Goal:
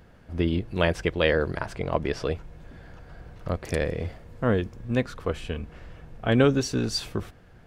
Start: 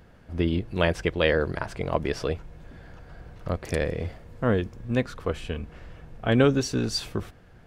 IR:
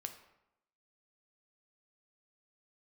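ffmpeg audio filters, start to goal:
-filter_complex "[0:a]asettb=1/sr,asplit=3[link_01][link_02][link_03];[link_01]atrim=end=1.764[link_04];[link_02]atrim=start=1.76:end=2.26,asetpts=PTS-STARTPTS,afade=type=in:duration=0.004:curve=qsin,afade=type=out:start_time=0.496:duration=0.004:curve=qsin,highshelf=frequency=9900:gain=-10[link_05];[link_03]atrim=start=2.256[link_06];[link_04][link_05]acrossfade=duration=0.004:curve1=hsin:curve2=qsin[link_07];[link_07][link_06]acrossfade=duration=0.004:curve1=qsin:curve2=hsin"

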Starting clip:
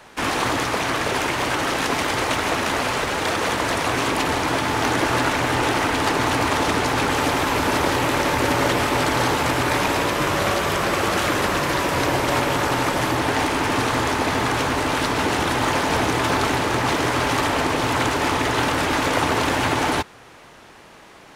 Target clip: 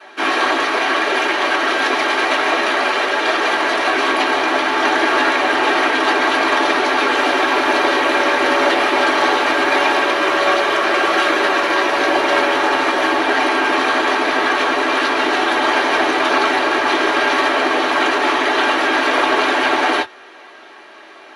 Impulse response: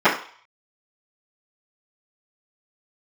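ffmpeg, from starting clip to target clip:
-filter_complex "[1:a]atrim=start_sample=2205,atrim=end_sample=3528,asetrate=83790,aresample=44100[link_01];[0:a][link_01]afir=irnorm=-1:irlink=0,volume=-12.5dB"

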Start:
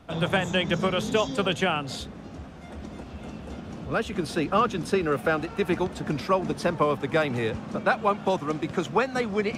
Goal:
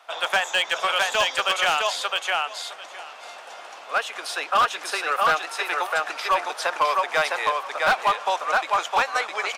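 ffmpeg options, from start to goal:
ffmpeg -i in.wav -filter_complex "[0:a]highpass=frequency=710:width=0.5412,highpass=frequency=710:width=1.3066,asplit=2[link_01][link_02];[link_02]aecho=0:1:660|1320|1980:0.708|0.106|0.0159[link_03];[link_01][link_03]amix=inputs=2:normalize=0,asoftclip=type=hard:threshold=-21dB,volume=6.5dB" out.wav

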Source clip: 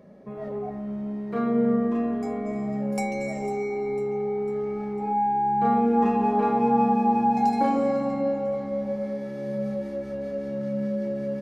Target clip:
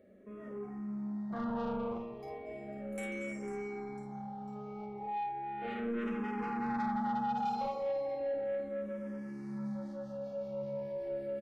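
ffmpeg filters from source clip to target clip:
ffmpeg -i in.wav -filter_complex "[0:a]asettb=1/sr,asplit=3[link_01][link_02][link_03];[link_01]atrim=end=1.304[link_04];[link_02]atrim=start=1.3:end=1.98,asetpts=PTS-STARTPTS,afade=type=in:duration=0.004:curve=qsin,afade=type=out:start_time=0.676:duration=0.004:curve=qsin,equalizer=frequency=500:width=0.67:gain=8.5[link_05];[link_03]atrim=start=1.976[link_06];[link_04][link_05]acrossfade=duration=0.004:curve1=hsin:curve2=qsin[link_07];[link_07][link_06]acrossfade=duration=0.004:curve1=qsin:curve2=hsin,asettb=1/sr,asplit=3[link_08][link_09][link_10];[link_08]atrim=end=7.684[link_11];[link_09]atrim=start=7.68:end=8.34,asetpts=PTS-STARTPTS,afade=type=in:duration=0.004:curve=qsin,afade=type=out:start_time=0.656:duration=0.004:curve=qsin,highpass=frequency=360:poles=1[link_12];[link_10]atrim=start=8.336[link_13];[link_11][link_12]acrossfade=duration=0.004:curve1=hsin:curve2=qsin[link_14];[link_14][link_13]acrossfade=duration=0.004:curve1=qsin:curve2=hsin,aecho=1:1:32|52:0.266|0.531,asoftclip=type=tanh:threshold=-21.5dB,asettb=1/sr,asplit=3[link_15][link_16][link_17];[link_15]atrim=end=4.864[link_18];[link_16]atrim=start=4.86:end=5.68,asetpts=PTS-STARTPTS,afade=type=in:duration=0.004:curve=qsin,afade=type=out:start_time=0.816:duration=0.004:curve=qsin,highshelf=frequency=3800:gain=-6.5[link_19];[link_17]atrim=start=5.676[link_20];[link_18][link_19]acrossfade=duration=0.004:curve1=hsin:curve2=qsin[link_21];[link_21][link_20]acrossfade=duration=0.004:curve1=qsin:curve2=hsin,asplit=2[link_22][link_23];[link_23]afreqshift=-0.35[link_24];[link_22][link_24]amix=inputs=2:normalize=1,volume=-7.5dB" out.wav

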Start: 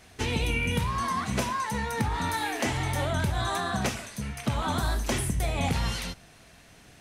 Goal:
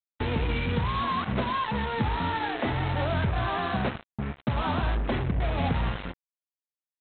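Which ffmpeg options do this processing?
ffmpeg -i in.wav -af "aeval=exprs='val(0)+0.5*0.0133*sgn(val(0))':channel_layout=same,agate=range=-7dB:threshold=-35dB:ratio=16:detection=peak,lowpass=1700,aresample=8000,acrusher=bits=4:mix=0:aa=0.5,aresample=44100" out.wav

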